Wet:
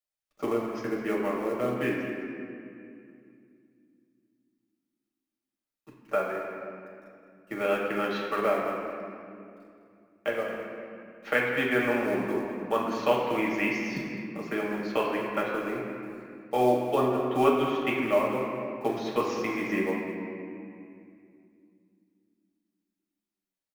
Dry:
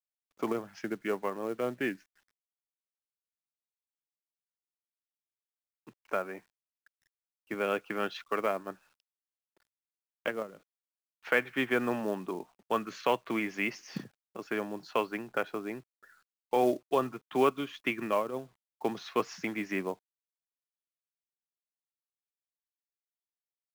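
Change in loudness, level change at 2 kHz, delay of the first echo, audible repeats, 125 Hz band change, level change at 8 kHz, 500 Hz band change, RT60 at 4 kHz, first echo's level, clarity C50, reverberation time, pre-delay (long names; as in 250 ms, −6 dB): +4.0 dB, +4.0 dB, 207 ms, 1, +7.0 dB, +2.0 dB, +5.0 dB, 1.5 s, −12.0 dB, 1.0 dB, 2.4 s, 5 ms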